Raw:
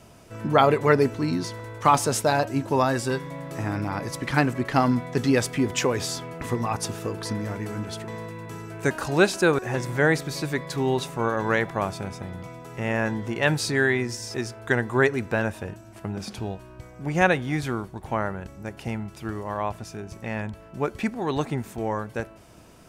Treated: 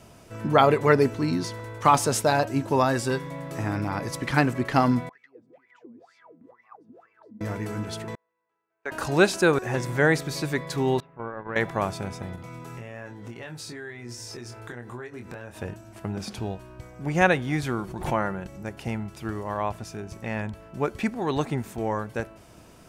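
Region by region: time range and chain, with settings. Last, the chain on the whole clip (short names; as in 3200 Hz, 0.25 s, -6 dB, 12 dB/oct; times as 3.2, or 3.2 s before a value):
5.09–7.41 compressor, threshold -30 dBFS + wah 2.1 Hz 220–2300 Hz, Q 16
8.15–8.92 HPF 740 Hz + tape spacing loss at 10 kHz 34 dB + gate -40 dBFS, range -31 dB
11–11.56 gate -26 dBFS, range -16 dB + LPF 2200 Hz 24 dB/oct + compressor 3:1, threshold -32 dBFS
12.35–15.58 compressor 10:1, threshold -36 dBFS + doubler 25 ms -5.5 dB
17.78–18.63 comb 5.7 ms, depth 39% + backwards sustainer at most 81 dB/s
whole clip: dry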